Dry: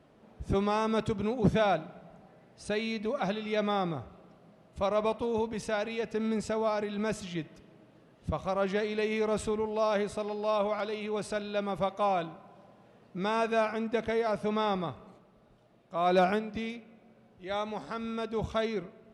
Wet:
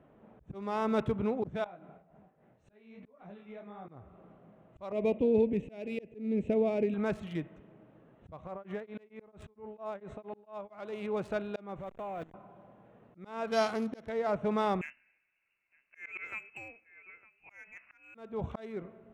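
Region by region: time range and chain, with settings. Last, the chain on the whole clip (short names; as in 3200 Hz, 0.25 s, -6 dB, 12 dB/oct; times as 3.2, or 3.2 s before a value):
1.64–3.89 tremolo 3.6 Hz, depth 73% + compressor 10:1, threshold -38 dBFS + detuned doubles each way 46 cents
4.92–6.94 EQ curve 120 Hz 0 dB, 270 Hz +8 dB, 530 Hz +4 dB, 880 Hz -11 dB, 1400 Hz -17 dB, 2500 Hz +6 dB, 5200 Hz -11 dB, 11000 Hz -2 dB + mismatched tape noise reduction decoder only
8.47–10.7 high shelf 8900 Hz -3.5 dB + compressor 8:1, threshold -31 dBFS + tremolo triangle 4.4 Hz, depth 100%
11.79–12.34 level-crossing sampler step -37 dBFS + bell 1000 Hz -4 dB 0.73 oct + level quantiser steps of 19 dB
13.47–14.09 sample sorter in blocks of 8 samples + LPF 4600 Hz + high shelf 3600 Hz +7 dB
14.81–18.15 echo 0.908 s -16.5 dB + inverted band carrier 2800 Hz + upward expander, over -48 dBFS
whole clip: Wiener smoothing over 9 samples; high shelf 4700 Hz -8 dB; auto swell 0.365 s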